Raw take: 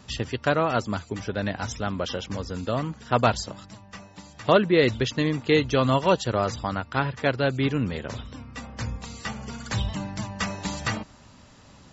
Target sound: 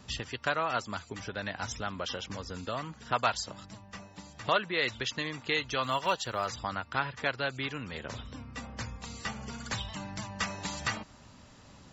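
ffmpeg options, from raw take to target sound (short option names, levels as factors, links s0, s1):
-filter_complex "[0:a]acrossover=split=760[s0][s1];[s0]acompressor=threshold=0.0178:ratio=6[s2];[s2][s1]amix=inputs=2:normalize=0,asplit=3[s3][s4][s5];[s3]afade=t=out:st=5.82:d=0.02[s6];[s4]acrusher=bits=9:mode=log:mix=0:aa=0.000001,afade=t=in:st=5.82:d=0.02,afade=t=out:st=6.5:d=0.02[s7];[s5]afade=t=in:st=6.5:d=0.02[s8];[s6][s7][s8]amix=inputs=3:normalize=0,volume=0.708"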